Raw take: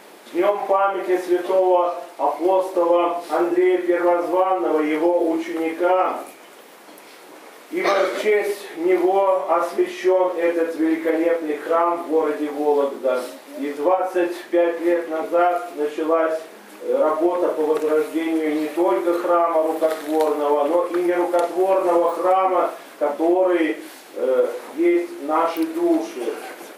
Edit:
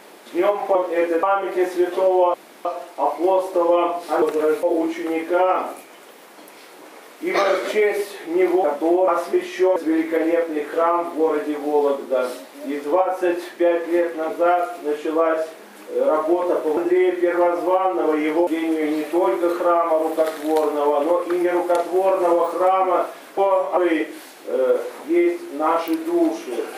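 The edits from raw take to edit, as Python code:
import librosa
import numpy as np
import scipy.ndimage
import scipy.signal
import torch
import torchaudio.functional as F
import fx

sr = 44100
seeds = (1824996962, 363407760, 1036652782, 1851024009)

y = fx.edit(x, sr, fx.insert_room_tone(at_s=1.86, length_s=0.31),
    fx.swap(start_s=3.43, length_s=1.7, other_s=17.7, other_length_s=0.41),
    fx.swap(start_s=9.14, length_s=0.39, other_s=23.02, other_length_s=0.44),
    fx.move(start_s=10.21, length_s=0.48, to_s=0.75), tone=tone)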